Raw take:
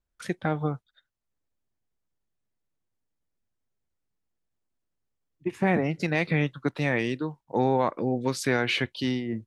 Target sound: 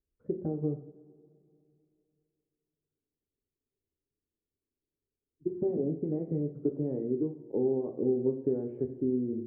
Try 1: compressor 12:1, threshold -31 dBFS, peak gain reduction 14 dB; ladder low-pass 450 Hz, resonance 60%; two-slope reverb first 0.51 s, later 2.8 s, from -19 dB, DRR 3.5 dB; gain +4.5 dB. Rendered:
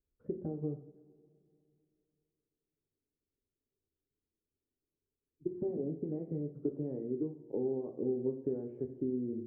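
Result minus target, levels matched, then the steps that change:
compressor: peak gain reduction +6 dB
change: compressor 12:1, threshold -24.5 dBFS, peak gain reduction 8 dB

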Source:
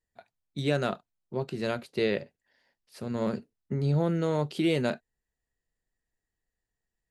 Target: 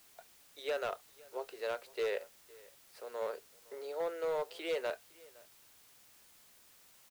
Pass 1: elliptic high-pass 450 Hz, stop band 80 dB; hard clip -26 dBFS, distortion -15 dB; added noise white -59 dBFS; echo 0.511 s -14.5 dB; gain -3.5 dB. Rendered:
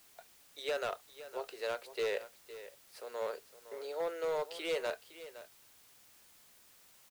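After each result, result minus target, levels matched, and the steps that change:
echo-to-direct +9 dB; 4000 Hz band +3.5 dB
change: echo 0.511 s -23.5 dB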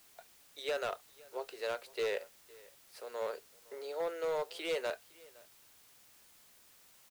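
4000 Hz band +2.5 dB
add after elliptic high-pass: high shelf 2900 Hz -6.5 dB

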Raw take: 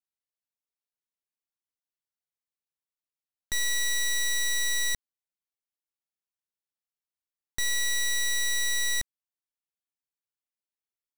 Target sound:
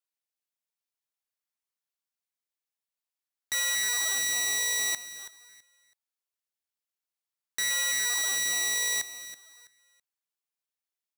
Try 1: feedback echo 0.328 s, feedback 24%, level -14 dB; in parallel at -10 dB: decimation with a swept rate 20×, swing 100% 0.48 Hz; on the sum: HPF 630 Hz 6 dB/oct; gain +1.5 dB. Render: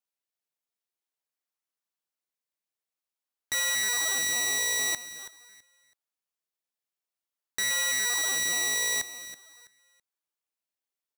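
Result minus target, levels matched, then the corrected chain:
500 Hz band +4.5 dB
feedback echo 0.328 s, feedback 24%, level -14 dB; in parallel at -10 dB: decimation with a swept rate 20×, swing 100% 0.48 Hz; on the sum: HPF 1300 Hz 6 dB/oct; gain +1.5 dB

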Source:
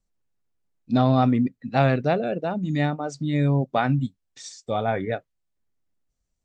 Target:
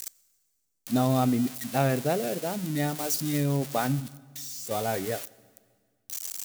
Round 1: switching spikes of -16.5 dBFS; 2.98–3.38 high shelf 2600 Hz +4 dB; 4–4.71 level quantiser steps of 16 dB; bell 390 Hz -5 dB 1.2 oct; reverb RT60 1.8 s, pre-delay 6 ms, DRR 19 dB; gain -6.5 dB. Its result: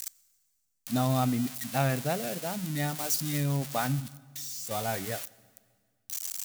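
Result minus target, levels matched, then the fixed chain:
500 Hz band -2.5 dB
switching spikes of -16.5 dBFS; 2.98–3.38 high shelf 2600 Hz +4 dB; 4–4.71 level quantiser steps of 16 dB; bell 390 Hz +4 dB 1.2 oct; reverb RT60 1.8 s, pre-delay 6 ms, DRR 19 dB; gain -6.5 dB

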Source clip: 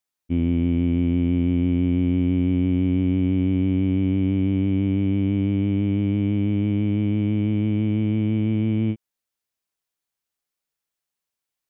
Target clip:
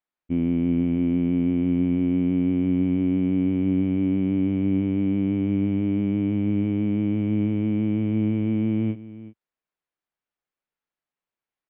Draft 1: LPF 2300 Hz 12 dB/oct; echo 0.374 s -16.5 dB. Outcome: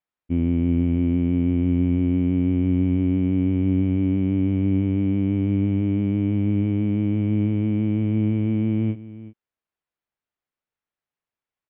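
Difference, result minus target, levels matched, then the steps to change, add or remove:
125 Hz band +3.5 dB
add after LPF: bell 84 Hz -11.5 dB 0.54 oct

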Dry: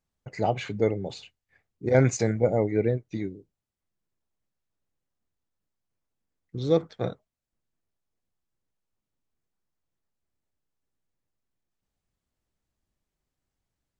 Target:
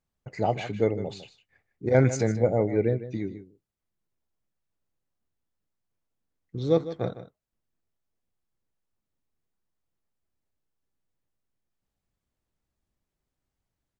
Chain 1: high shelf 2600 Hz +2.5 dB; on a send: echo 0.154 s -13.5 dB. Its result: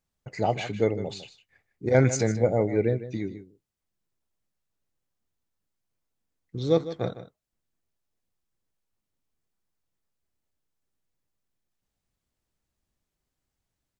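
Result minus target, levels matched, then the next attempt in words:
4000 Hz band +3.5 dB
high shelf 2600 Hz -3.5 dB; on a send: echo 0.154 s -13.5 dB

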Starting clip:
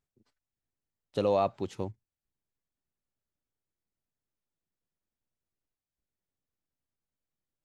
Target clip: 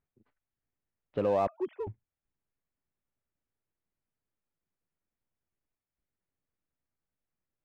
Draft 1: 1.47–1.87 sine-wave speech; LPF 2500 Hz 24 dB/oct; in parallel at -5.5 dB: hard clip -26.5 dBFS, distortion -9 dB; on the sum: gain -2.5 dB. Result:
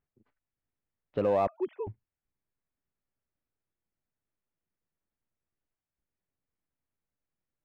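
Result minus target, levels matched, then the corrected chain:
hard clip: distortion -4 dB
1.47–1.87 sine-wave speech; LPF 2500 Hz 24 dB/oct; in parallel at -5.5 dB: hard clip -34 dBFS, distortion -4 dB; on the sum: gain -2.5 dB

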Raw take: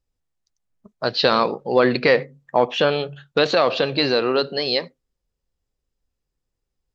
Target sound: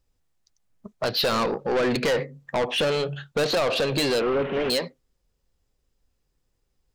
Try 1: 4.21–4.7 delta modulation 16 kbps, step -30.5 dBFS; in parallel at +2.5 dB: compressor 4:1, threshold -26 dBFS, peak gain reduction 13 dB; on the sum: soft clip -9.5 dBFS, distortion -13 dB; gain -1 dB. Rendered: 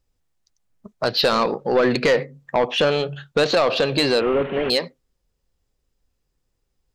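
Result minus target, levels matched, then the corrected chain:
soft clip: distortion -7 dB
4.21–4.7 delta modulation 16 kbps, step -30.5 dBFS; in parallel at +2.5 dB: compressor 4:1, threshold -26 dBFS, peak gain reduction 13 dB; on the sum: soft clip -18.5 dBFS, distortion -6 dB; gain -1 dB

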